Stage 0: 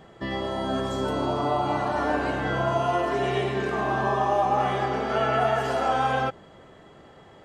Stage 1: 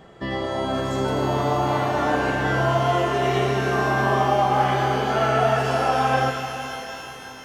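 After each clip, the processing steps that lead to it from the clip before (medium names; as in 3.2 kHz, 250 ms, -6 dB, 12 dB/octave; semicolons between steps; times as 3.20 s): pitch-shifted reverb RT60 3.6 s, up +12 st, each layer -8 dB, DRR 5.5 dB; trim +2 dB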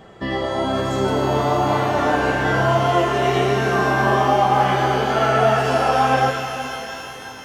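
flange 1.1 Hz, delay 8.7 ms, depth 5 ms, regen +61%; trim +7.5 dB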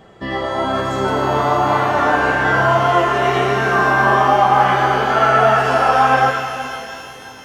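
dynamic bell 1.3 kHz, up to +8 dB, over -32 dBFS, Q 0.82; trim -1 dB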